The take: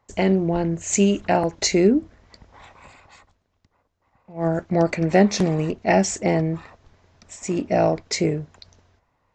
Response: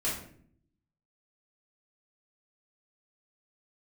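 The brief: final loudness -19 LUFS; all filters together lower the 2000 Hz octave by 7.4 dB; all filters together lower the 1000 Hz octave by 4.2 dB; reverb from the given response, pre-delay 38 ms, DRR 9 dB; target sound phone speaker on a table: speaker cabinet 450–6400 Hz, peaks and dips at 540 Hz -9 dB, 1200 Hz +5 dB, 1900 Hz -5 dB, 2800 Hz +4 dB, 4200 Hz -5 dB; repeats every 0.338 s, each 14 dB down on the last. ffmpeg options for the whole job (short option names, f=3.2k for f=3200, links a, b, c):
-filter_complex "[0:a]equalizer=f=1k:t=o:g=-4,equalizer=f=2k:t=o:g=-6.5,aecho=1:1:338|676:0.2|0.0399,asplit=2[a][b];[1:a]atrim=start_sample=2205,adelay=38[c];[b][c]afir=irnorm=-1:irlink=0,volume=-15.5dB[d];[a][d]amix=inputs=2:normalize=0,highpass=f=450:w=0.5412,highpass=f=450:w=1.3066,equalizer=f=540:t=q:w=4:g=-9,equalizer=f=1.2k:t=q:w=4:g=5,equalizer=f=1.9k:t=q:w=4:g=-5,equalizer=f=2.8k:t=q:w=4:g=4,equalizer=f=4.2k:t=q:w=4:g=-5,lowpass=f=6.4k:w=0.5412,lowpass=f=6.4k:w=1.3066,volume=10dB"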